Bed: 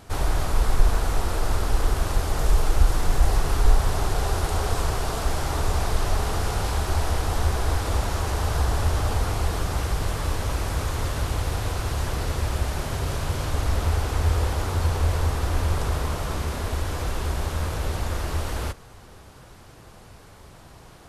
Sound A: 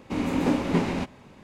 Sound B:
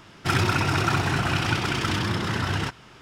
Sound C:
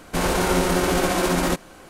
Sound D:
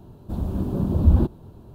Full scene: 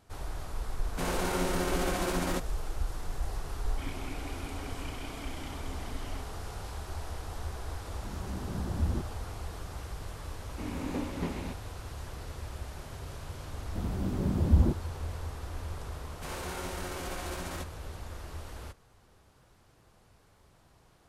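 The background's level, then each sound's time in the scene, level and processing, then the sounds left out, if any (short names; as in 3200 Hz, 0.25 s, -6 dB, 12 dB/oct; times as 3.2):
bed -15 dB
0.84 add C -10.5 dB
3.52 add B -8 dB + vowel filter i
7.75 add D -14 dB
10.48 add A -11.5 dB
13.46 add D -6.5 dB
16.08 add C -15.5 dB + low shelf 490 Hz -7.5 dB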